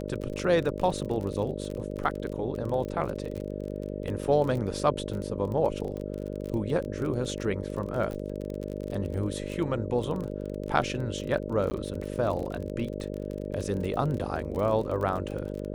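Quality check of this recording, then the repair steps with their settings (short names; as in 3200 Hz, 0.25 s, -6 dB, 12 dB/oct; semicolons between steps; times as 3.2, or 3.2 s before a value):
buzz 50 Hz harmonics 12 -35 dBFS
crackle 31/s -33 dBFS
11.7–11.71 gap 10 ms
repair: de-click; de-hum 50 Hz, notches 12; interpolate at 11.7, 10 ms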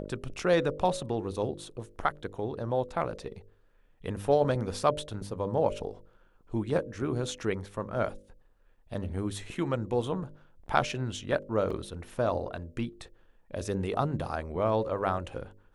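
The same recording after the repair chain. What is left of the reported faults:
none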